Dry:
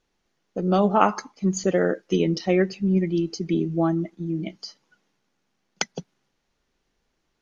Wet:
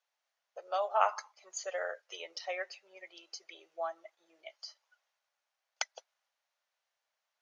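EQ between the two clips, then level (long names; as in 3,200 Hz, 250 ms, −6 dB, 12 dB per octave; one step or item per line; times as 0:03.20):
elliptic high-pass filter 590 Hz, stop band 60 dB
−8.0 dB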